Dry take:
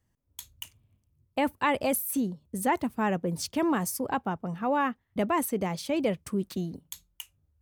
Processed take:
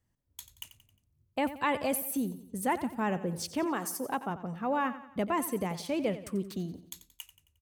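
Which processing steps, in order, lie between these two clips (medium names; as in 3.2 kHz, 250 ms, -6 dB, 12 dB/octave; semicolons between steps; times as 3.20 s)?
3.64–4.29 s: high-pass 340 Hz -> 160 Hz 12 dB/octave; feedback delay 89 ms, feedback 47%, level -14 dB; trim -3.5 dB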